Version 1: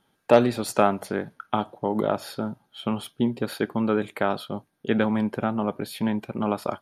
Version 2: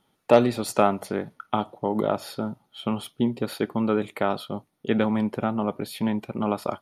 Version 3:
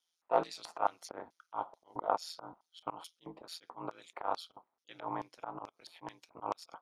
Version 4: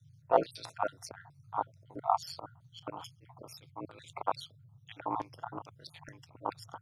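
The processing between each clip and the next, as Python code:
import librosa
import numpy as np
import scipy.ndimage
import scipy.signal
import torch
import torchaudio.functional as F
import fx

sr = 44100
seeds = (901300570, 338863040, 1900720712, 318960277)

y1 = fx.notch(x, sr, hz=1600.0, q=9.1)
y2 = y1 * np.sin(2.0 * np.pi * 84.0 * np.arange(len(y1)) / sr)
y2 = fx.auto_swell(y2, sr, attack_ms=111.0)
y2 = fx.filter_lfo_bandpass(y2, sr, shape='square', hz=2.3, low_hz=940.0, high_hz=5700.0, q=2.8)
y2 = y2 * 10.0 ** (3.5 / 20.0)
y3 = fx.spec_dropout(y2, sr, seeds[0], share_pct=47)
y3 = fx.dmg_noise_band(y3, sr, seeds[1], low_hz=91.0, high_hz=150.0, level_db=-63.0)
y3 = y3 * 10.0 ** (4.5 / 20.0)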